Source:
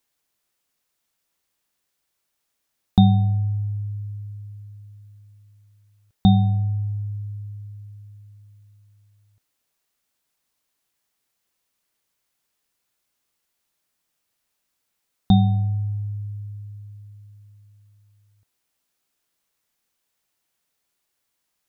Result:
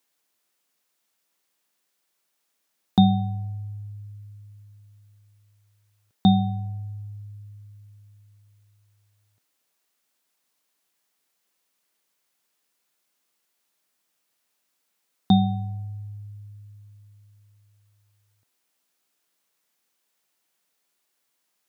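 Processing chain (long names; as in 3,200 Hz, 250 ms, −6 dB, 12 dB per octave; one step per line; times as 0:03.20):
high-pass filter 180 Hz 12 dB per octave
level +1.5 dB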